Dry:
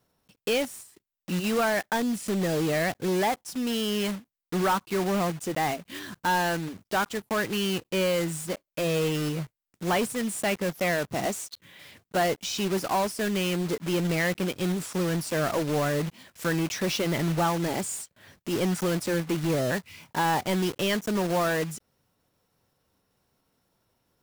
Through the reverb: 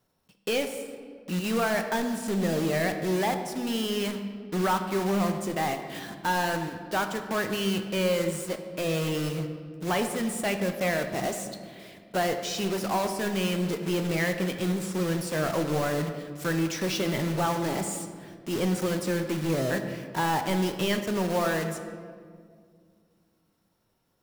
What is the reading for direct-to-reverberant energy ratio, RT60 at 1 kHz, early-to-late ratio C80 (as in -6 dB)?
6.0 dB, 1.7 s, 9.0 dB